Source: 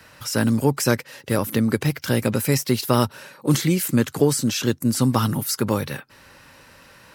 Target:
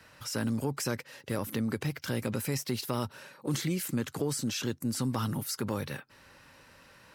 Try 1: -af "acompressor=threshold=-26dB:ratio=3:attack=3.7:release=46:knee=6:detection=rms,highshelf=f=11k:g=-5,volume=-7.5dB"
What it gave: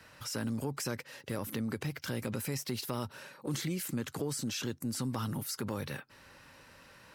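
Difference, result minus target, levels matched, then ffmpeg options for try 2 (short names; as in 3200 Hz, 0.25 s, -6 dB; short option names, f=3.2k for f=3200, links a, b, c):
compressor: peak gain reduction +4.5 dB
-af "acompressor=threshold=-19.5dB:ratio=3:attack=3.7:release=46:knee=6:detection=rms,highshelf=f=11k:g=-5,volume=-7.5dB"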